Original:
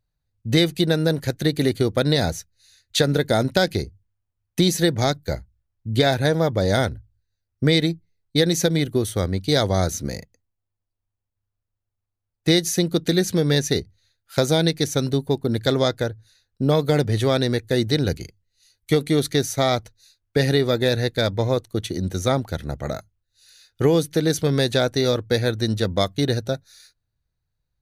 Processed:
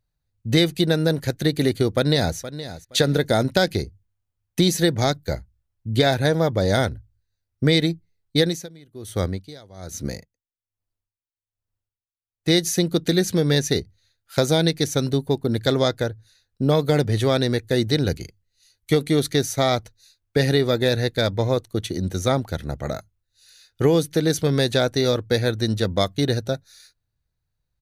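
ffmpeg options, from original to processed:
ffmpeg -i in.wav -filter_complex "[0:a]asplit=2[link_01][link_02];[link_02]afade=type=in:start_time=1.94:duration=0.01,afade=type=out:start_time=2.37:duration=0.01,aecho=0:1:470|940:0.211349|0.0422698[link_03];[link_01][link_03]amix=inputs=2:normalize=0,asettb=1/sr,asplit=3[link_04][link_05][link_06];[link_04]atrim=end=8.404[link_07];[link_05]atrim=start=8.4:end=12.57,asetpts=PTS-STARTPTS,afade=type=in:duration=0.004:curve=qsin,afade=type=out:start_time=4.166:duration=0.004:curve=qsin,aeval=exprs='val(0)*pow(10,-26*(0.5-0.5*cos(2*PI*1.2*n/s))/20)':channel_layout=same[link_08];[link_06]atrim=start=12.566[link_09];[link_07][link_08]acrossfade=duration=0.004:curve1=hsin:curve2=qsin[link_10];[link_10][link_09]acrossfade=duration=0.004:curve1=qsin:curve2=hsin" out.wav

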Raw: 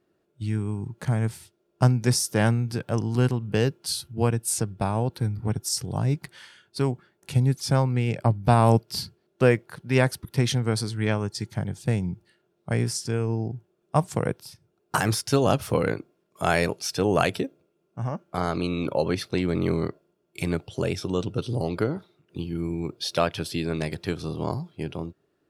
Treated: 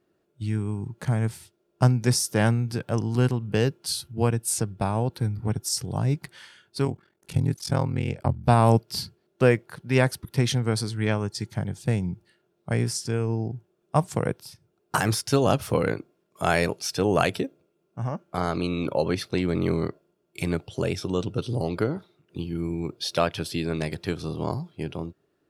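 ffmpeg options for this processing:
ffmpeg -i in.wav -filter_complex "[0:a]asplit=3[link_01][link_02][link_03];[link_01]afade=type=out:start_time=6.85:duration=0.02[link_04];[link_02]aeval=exprs='val(0)*sin(2*PI*21*n/s)':channel_layout=same,afade=type=in:start_time=6.85:duration=0.02,afade=type=out:start_time=8.46:duration=0.02[link_05];[link_03]afade=type=in:start_time=8.46:duration=0.02[link_06];[link_04][link_05][link_06]amix=inputs=3:normalize=0" out.wav

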